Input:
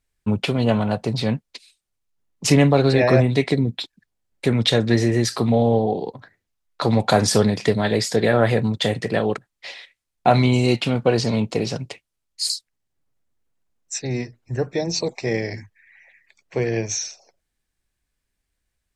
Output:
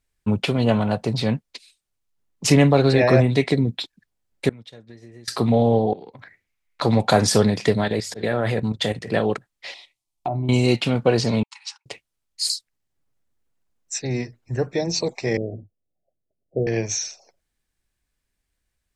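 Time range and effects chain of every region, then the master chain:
0:04.49–0:05.28: downward expander −9 dBFS + downward compressor 16 to 1, threshold −38 dBFS
0:05.93–0:06.81: parametric band 2,200 Hz +14.5 dB 0.55 octaves + downward compressor, threshold −37 dBFS
0:07.84–0:09.12: hum removal 47.26 Hz, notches 3 + volume swells 131 ms + output level in coarse steps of 11 dB
0:09.74–0:10.49: treble cut that deepens with the level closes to 670 Hz, closed at −13 dBFS + phaser with its sweep stopped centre 320 Hz, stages 8 + downward compressor 3 to 1, threshold −23 dBFS
0:11.43–0:11.86: linear-phase brick-wall band-pass 800–10,000 Hz + expander for the loud parts 2.5 to 1, over −46 dBFS
0:15.37–0:16.67: mu-law and A-law mismatch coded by A + Butterworth low-pass 710 Hz 96 dB per octave
whole clip: no processing

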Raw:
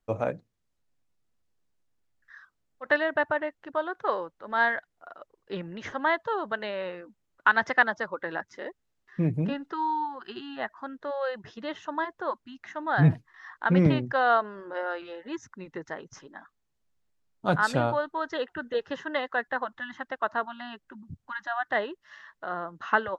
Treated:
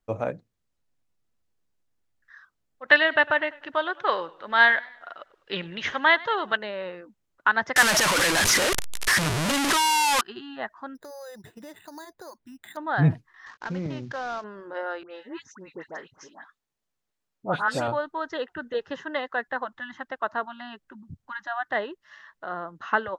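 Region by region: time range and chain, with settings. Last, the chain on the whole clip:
0:02.88–0:06.57: parametric band 3,000 Hz +14.5 dB 1.9 octaves + feedback echo with a swinging delay time 101 ms, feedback 43%, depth 98 cents, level −21.5 dB
0:07.76–0:10.21: linear delta modulator 64 kbit/s, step −16.5 dBFS + tilt shelving filter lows −4.5 dB, about 800 Hz
0:10.95–0:12.77: parametric band 1,200 Hz −7 dB 0.48 octaves + downward compressor 5 to 1, threshold −39 dBFS + bad sample-rate conversion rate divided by 8×, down filtered, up hold
0:13.46–0:14.44: variable-slope delta modulation 32 kbit/s + downward compressor 2.5 to 1, threshold −32 dBFS
0:15.03–0:17.88: low-shelf EQ 180 Hz −11.5 dB + all-pass dispersion highs, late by 84 ms, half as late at 1,700 Hz
whole clip: no processing

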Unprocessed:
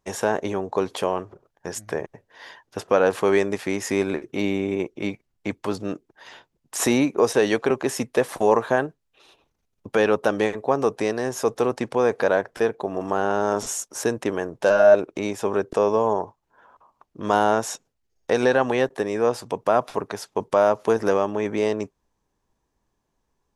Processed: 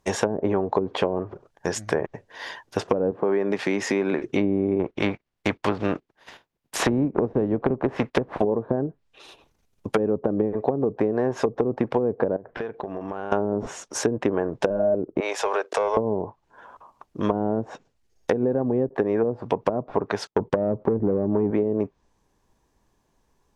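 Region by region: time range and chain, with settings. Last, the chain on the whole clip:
0:03.11–0:04.19: high-pass filter 130 Hz 24 dB per octave + downward compressor 2 to 1, threshold −27 dBFS
0:04.79–0:08.39: compressing power law on the bin magnitudes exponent 0.62 + noise gate −44 dBFS, range −15 dB + parametric band 8,300 Hz −8.5 dB 1.7 octaves
0:12.36–0:13.32: low-pass filter 2,700 Hz + downward compressor 8 to 1, threshold −34 dBFS
0:15.20–0:15.97: high-pass filter 520 Hz 24 dB per octave + leveller curve on the samples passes 1 + downward compressor 3 to 1, threshold −27 dBFS
0:20.27–0:21.51: downward expander −43 dBFS + low-shelf EQ 310 Hz +7 dB + saturating transformer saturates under 700 Hz
whole clip: notch filter 1,300 Hz, Q 29; treble cut that deepens with the level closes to 340 Hz, closed at −17.5 dBFS; downward compressor, threshold −25 dBFS; level +7 dB

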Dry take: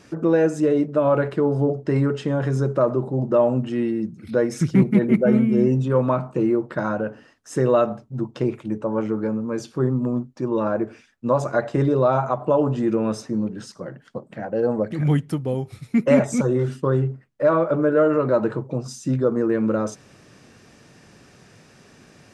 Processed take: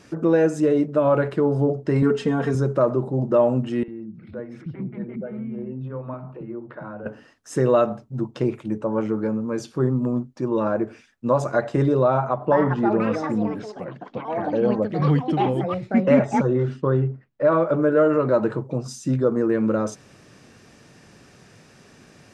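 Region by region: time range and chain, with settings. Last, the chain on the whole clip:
0:02.02–0:02.55: comb filter 4.4 ms, depth 97% + one half of a high-frequency compander decoder only
0:03.83–0:07.06: downward compressor 2 to 1, threshold −36 dBFS + high-frequency loss of the air 410 metres + multiband delay without the direct sound highs, lows 50 ms, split 330 Hz
0:12.03–0:17.52: delay with pitch and tempo change per echo 484 ms, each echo +6 semitones, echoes 2, each echo −6 dB + high-frequency loss of the air 140 metres
whole clip: no processing

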